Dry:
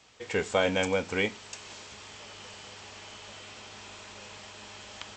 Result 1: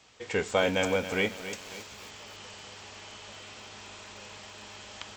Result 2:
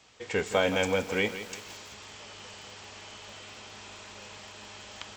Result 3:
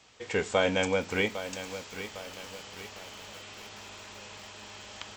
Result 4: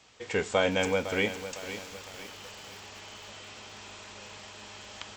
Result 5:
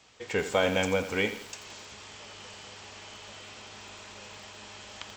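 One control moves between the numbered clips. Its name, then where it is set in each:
feedback echo at a low word length, delay time: 274, 169, 804, 506, 85 milliseconds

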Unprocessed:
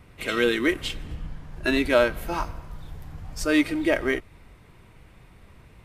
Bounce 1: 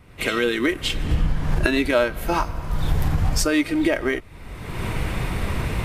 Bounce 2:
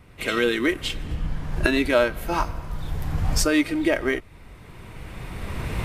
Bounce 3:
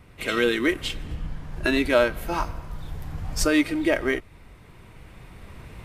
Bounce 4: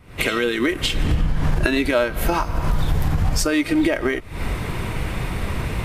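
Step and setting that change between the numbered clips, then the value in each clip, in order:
camcorder AGC, rising by: 35, 14, 5.5, 87 dB per second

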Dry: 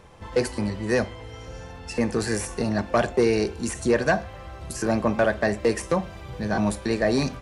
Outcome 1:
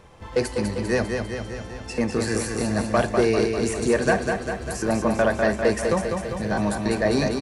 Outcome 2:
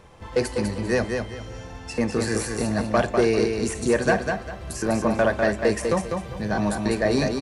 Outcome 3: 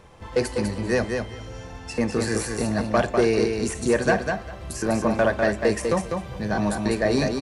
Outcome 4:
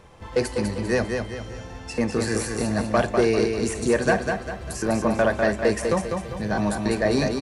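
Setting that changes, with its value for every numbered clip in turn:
repeating echo, feedback: 62, 27, 16, 41%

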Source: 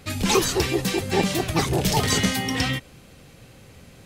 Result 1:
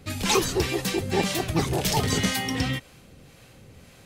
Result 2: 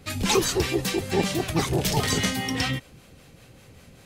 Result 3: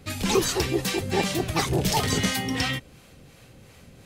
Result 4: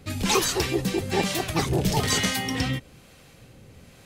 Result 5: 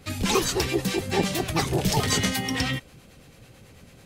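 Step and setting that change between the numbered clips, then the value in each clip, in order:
two-band tremolo in antiphase, speed: 1.9, 5.1, 2.8, 1.1, 9.1 Hertz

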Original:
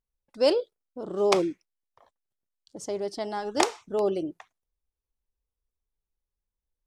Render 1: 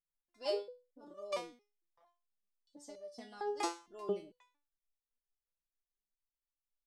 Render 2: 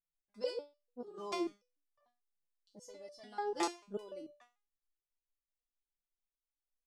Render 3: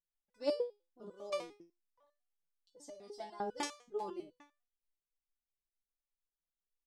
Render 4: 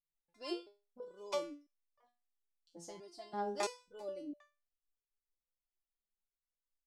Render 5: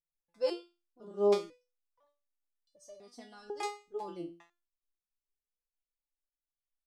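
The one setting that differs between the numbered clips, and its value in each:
step-sequenced resonator, speed: 4.4, 6.8, 10, 3, 2 Hertz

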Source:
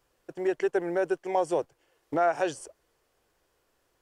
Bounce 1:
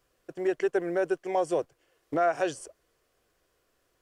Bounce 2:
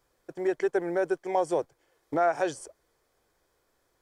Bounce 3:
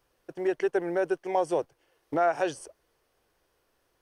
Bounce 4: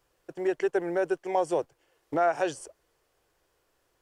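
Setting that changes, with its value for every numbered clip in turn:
notch filter, centre frequency: 870, 2,800, 7,300, 230 Hertz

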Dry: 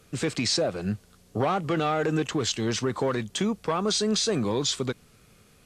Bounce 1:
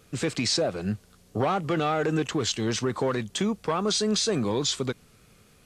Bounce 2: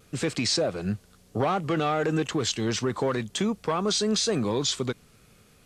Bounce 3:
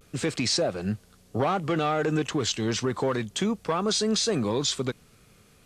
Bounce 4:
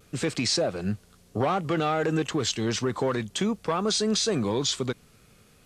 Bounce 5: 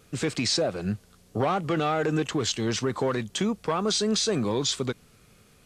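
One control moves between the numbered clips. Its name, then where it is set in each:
pitch vibrato, speed: 4.8, 0.98, 0.3, 0.59, 3.2 Hertz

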